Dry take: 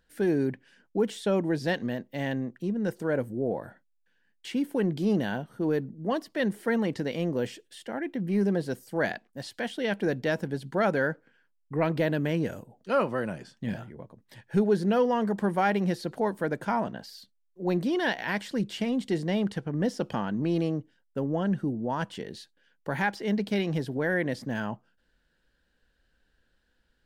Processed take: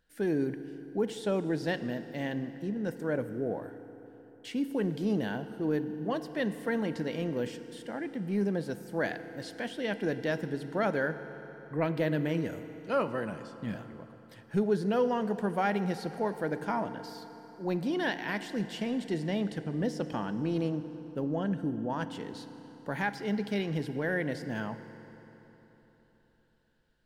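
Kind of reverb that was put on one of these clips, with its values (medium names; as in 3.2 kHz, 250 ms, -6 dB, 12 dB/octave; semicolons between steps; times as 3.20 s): FDN reverb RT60 3.9 s, high-frequency decay 0.75×, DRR 10.5 dB; trim -4 dB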